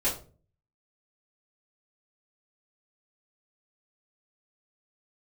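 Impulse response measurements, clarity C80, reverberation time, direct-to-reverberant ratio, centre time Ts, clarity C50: 14.0 dB, 0.40 s, −9.0 dB, 26 ms, 8.5 dB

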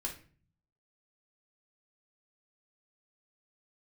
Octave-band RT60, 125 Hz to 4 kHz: 0.95, 0.75, 0.45, 0.40, 0.40, 0.35 seconds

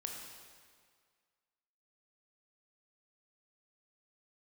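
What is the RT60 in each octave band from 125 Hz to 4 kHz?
1.8, 1.8, 1.9, 1.9, 1.8, 1.6 seconds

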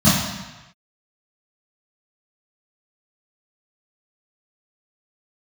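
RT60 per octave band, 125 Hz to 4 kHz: 1.1, 0.95, 1.1, 1.1, 1.2, 1.0 seconds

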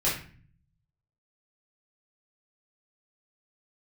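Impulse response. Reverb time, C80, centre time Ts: 0.45 s, 10.0 dB, 37 ms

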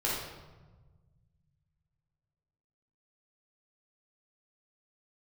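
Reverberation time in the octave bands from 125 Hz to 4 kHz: 3.1, 2.2, 1.3, 1.2, 0.95, 0.80 seconds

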